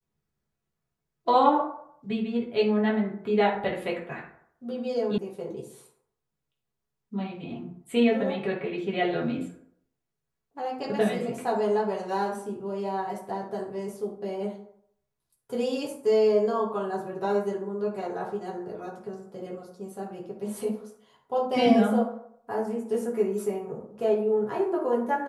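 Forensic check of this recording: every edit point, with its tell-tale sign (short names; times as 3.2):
5.18 sound cut off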